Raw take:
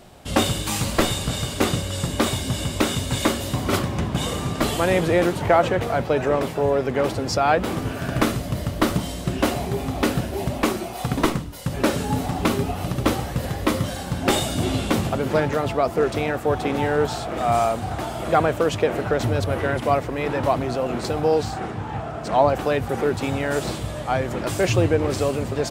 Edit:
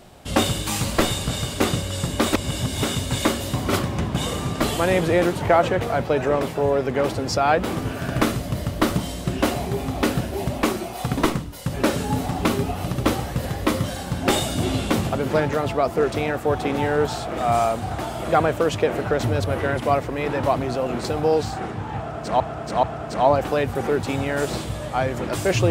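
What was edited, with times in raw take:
2.33–2.83 s: reverse
21.97–22.40 s: loop, 3 plays

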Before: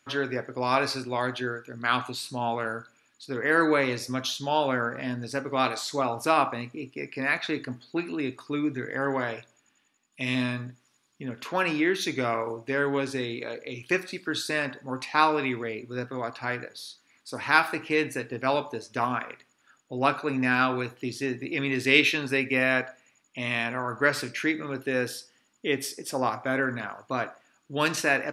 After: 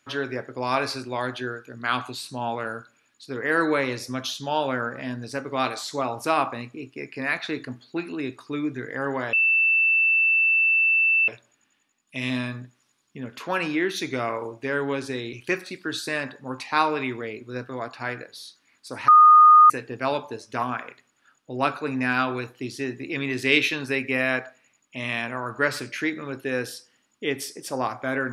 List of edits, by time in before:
9.33 s: add tone 2.66 kHz -16.5 dBFS 1.95 s
13.38–13.75 s: delete
17.50–18.12 s: bleep 1.23 kHz -8.5 dBFS

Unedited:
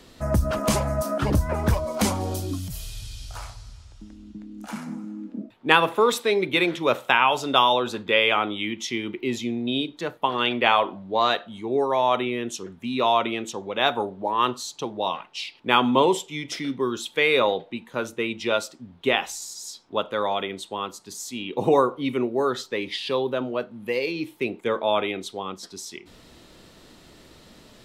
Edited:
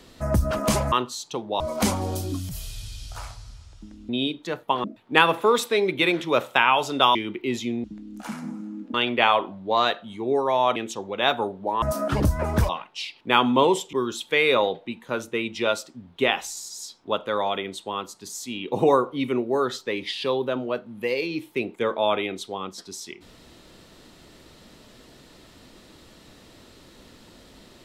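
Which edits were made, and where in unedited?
0.92–1.79 s: swap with 14.40–15.08 s
4.28–5.38 s: swap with 9.63–10.38 s
7.69–8.94 s: delete
12.20–13.34 s: delete
16.32–16.78 s: delete

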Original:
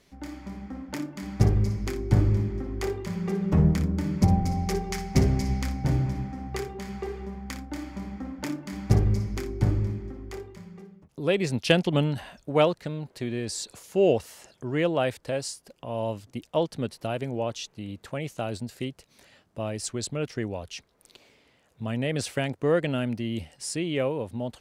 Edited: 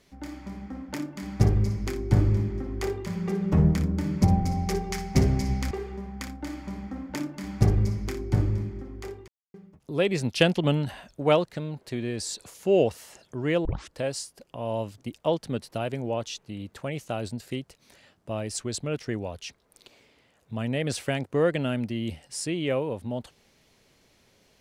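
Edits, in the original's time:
5.71–7.00 s: delete
10.57–10.83 s: mute
14.94 s: tape start 0.28 s

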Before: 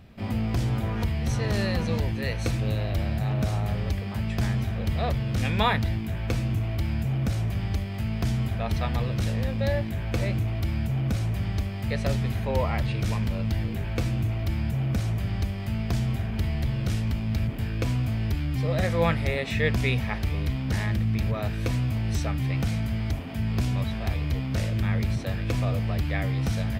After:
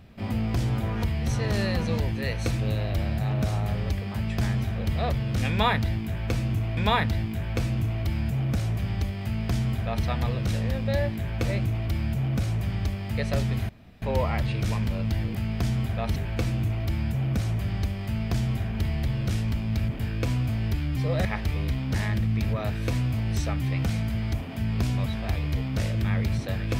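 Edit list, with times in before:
5.50–6.77 s: loop, 2 plays
7.97–8.78 s: copy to 13.75 s
12.42 s: insert room tone 0.33 s
18.84–20.03 s: delete

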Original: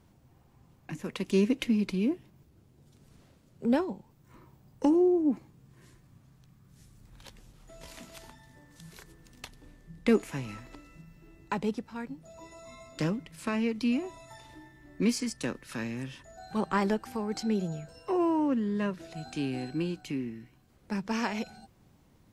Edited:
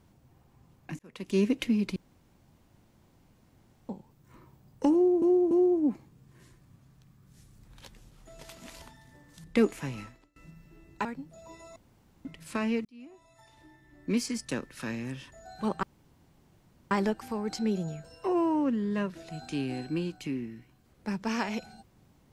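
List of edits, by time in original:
0.99–1.43 s: fade in
1.96–3.89 s: room tone
4.93–5.22 s: loop, 3 plays
7.85–8.24 s: reverse
8.86–9.95 s: delete
10.52–10.87 s: fade out quadratic, to -23.5 dB
11.56–11.97 s: delete
12.68–13.17 s: room tone
13.77–15.36 s: fade in
16.75 s: insert room tone 1.08 s

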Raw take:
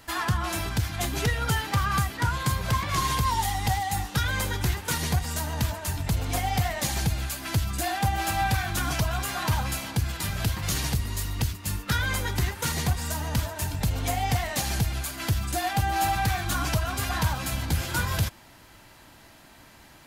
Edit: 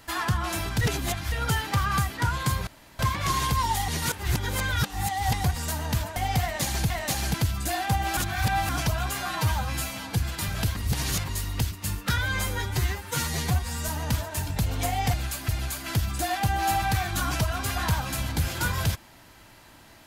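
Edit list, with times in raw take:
0.81–1.32 s: reverse
2.67 s: insert room tone 0.32 s
3.56–5.12 s: reverse
5.84–6.38 s: delete
7.12–7.47 s: swap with 14.38–14.82 s
8.30–8.82 s: reverse
9.34–9.97 s: stretch 1.5×
10.58–11.10 s: reverse
11.99–13.13 s: stretch 1.5×

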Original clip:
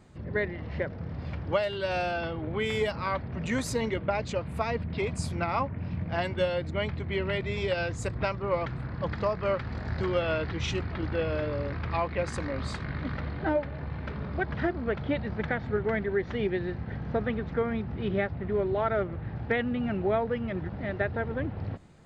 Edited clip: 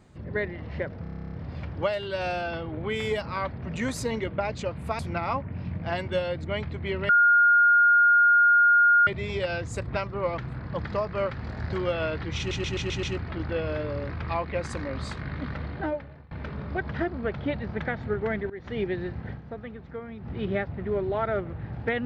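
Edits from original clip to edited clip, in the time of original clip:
1.03 s: stutter 0.03 s, 11 plays
4.69–5.25 s: delete
7.35 s: add tone 1.42 kHz -15 dBFS 1.98 s
10.66 s: stutter 0.13 s, 6 plays
13.35–13.94 s: fade out, to -22.5 dB
16.13–16.42 s: fade in, from -19.5 dB
16.93–17.93 s: dip -9.5 dB, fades 0.12 s

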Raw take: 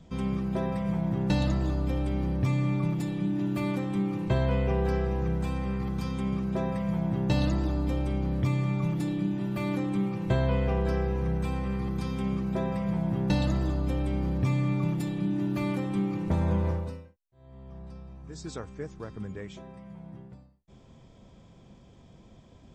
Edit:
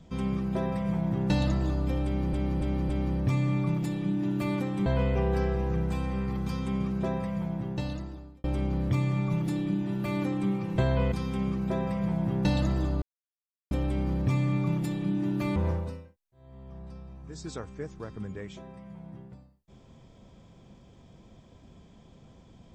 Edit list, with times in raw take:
2.05–2.33 s: loop, 4 plays
4.02–4.38 s: delete
6.53–7.96 s: fade out
10.64–11.97 s: delete
13.87 s: insert silence 0.69 s
15.72–16.56 s: delete

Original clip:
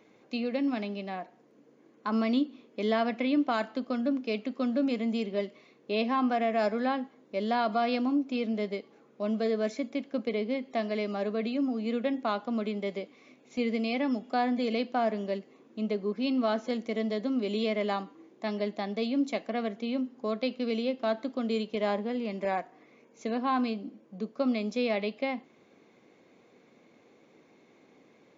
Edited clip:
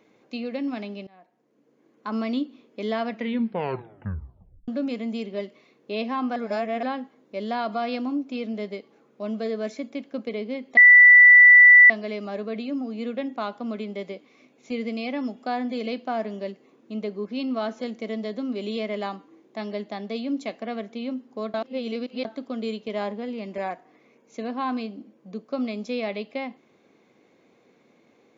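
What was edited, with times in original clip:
1.07–2.10 s: fade in, from -24 dB
3.10 s: tape stop 1.58 s
6.36–6.83 s: reverse
10.77 s: add tone 1.97 kHz -7.5 dBFS 1.13 s
20.41–21.12 s: reverse

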